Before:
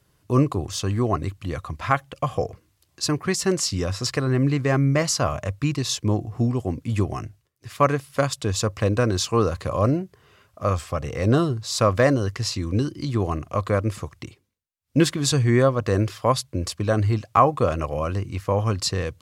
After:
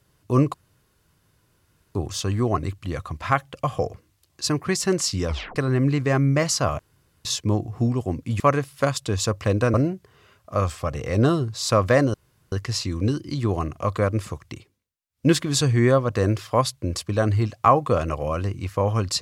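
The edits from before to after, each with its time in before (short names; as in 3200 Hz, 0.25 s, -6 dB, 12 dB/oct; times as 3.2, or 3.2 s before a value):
0.54 insert room tone 1.41 s
3.86 tape stop 0.29 s
5.38–5.84 room tone
6.99–7.76 cut
9.1–9.83 cut
12.23 insert room tone 0.38 s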